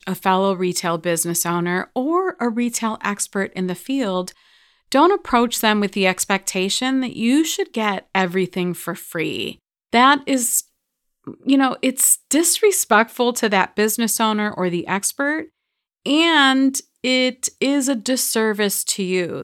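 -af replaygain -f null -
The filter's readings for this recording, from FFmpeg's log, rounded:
track_gain = -1.5 dB
track_peak = 0.585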